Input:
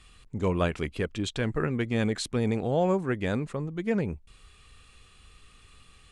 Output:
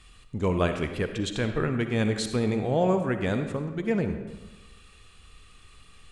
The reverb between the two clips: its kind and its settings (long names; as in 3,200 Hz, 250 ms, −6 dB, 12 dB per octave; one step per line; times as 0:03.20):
comb and all-pass reverb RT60 1.2 s, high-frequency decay 0.7×, pre-delay 20 ms, DRR 7 dB
level +1 dB